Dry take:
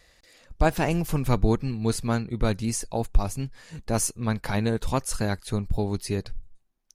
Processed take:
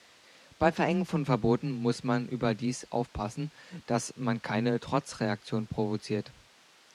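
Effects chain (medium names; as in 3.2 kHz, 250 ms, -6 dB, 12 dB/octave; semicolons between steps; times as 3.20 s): added noise white -51 dBFS; band-pass 130–4700 Hz; frequency shift +18 Hz; trim -2 dB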